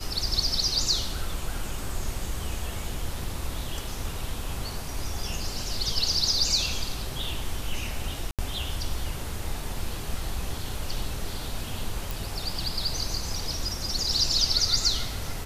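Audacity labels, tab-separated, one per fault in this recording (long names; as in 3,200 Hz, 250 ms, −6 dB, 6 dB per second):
8.310000	8.390000	drop-out 77 ms
12.110000	12.110000	click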